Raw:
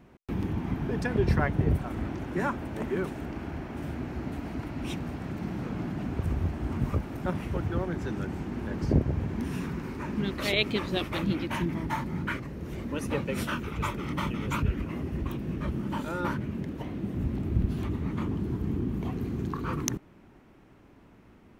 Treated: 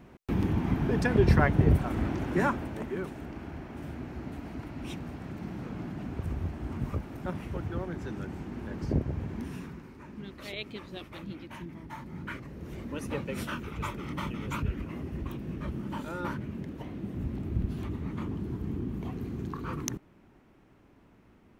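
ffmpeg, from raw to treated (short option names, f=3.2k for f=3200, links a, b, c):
-af "volume=11.5dB,afade=t=out:st=2.4:d=0.46:silence=0.421697,afade=t=out:st=9.36:d=0.53:silence=0.398107,afade=t=in:st=11.88:d=0.77:silence=0.375837"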